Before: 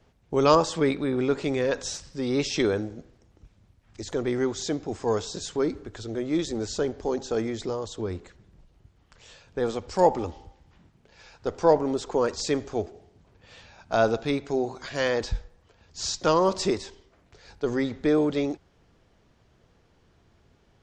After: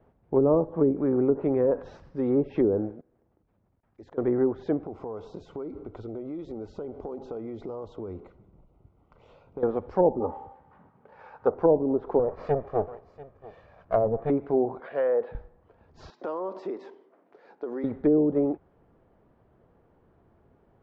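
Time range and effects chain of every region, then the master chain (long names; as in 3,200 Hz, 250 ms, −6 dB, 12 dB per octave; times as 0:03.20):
0:02.91–0:04.18: low-shelf EQ 140 Hz −6 dB + output level in coarse steps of 23 dB
0:04.84–0:09.63: Butterworth band-reject 1,700 Hz, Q 3.9 + downward compressor 12 to 1, threshold −34 dBFS
0:10.20–0:11.54: high-pass filter 110 Hz 6 dB per octave + parametric band 1,100 Hz +11 dB 1.9 octaves + notch comb filter 340 Hz
0:12.19–0:14.30: lower of the sound and its delayed copy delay 1.7 ms + single-tap delay 688 ms −20 dB
0:14.80–0:15.35: loudspeaker in its box 300–3,500 Hz, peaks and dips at 310 Hz −9 dB, 480 Hz +7 dB, 1,000 Hz −5 dB + downward compressor 3 to 1, threshold −24 dBFS
0:16.10–0:17.84: high-pass filter 240 Hz 24 dB per octave + downward compressor 4 to 1, threshold −33 dBFS
whole clip: treble cut that deepens with the level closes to 450 Hz, closed at −19 dBFS; low-pass filter 1,000 Hz 12 dB per octave; low-shelf EQ 160 Hz −8 dB; level +4 dB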